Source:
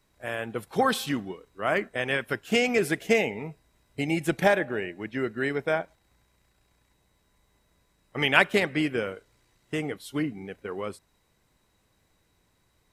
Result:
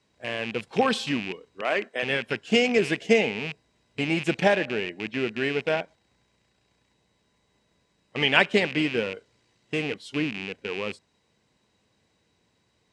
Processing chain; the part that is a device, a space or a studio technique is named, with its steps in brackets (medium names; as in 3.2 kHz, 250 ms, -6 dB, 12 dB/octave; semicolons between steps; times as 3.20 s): 1.61–2.03 s: high-pass 330 Hz 12 dB/octave; car door speaker with a rattle (rattle on loud lows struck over -41 dBFS, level -23 dBFS; cabinet simulation 89–7800 Hz, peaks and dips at 220 Hz +4 dB, 460 Hz +3 dB, 1.3 kHz -4 dB, 2.9 kHz +4 dB, 4.7 kHz +3 dB)